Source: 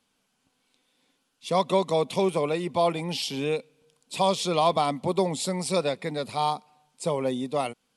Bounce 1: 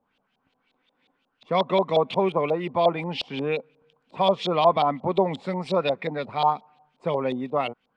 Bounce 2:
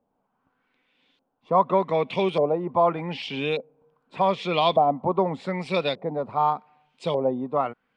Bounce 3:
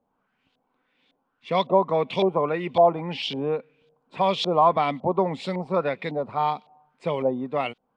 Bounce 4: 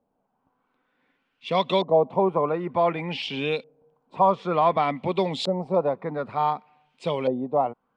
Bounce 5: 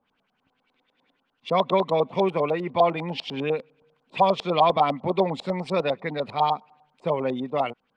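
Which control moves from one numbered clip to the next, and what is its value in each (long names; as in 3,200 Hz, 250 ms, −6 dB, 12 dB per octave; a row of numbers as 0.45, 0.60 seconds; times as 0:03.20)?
auto-filter low-pass, speed: 5.6, 0.84, 1.8, 0.55, 10 Hertz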